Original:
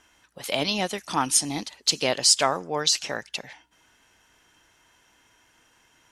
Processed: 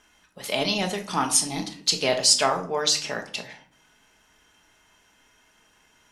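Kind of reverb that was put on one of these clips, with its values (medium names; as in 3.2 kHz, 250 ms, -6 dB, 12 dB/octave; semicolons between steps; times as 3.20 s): simulated room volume 500 m³, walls furnished, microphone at 1.4 m; trim -1 dB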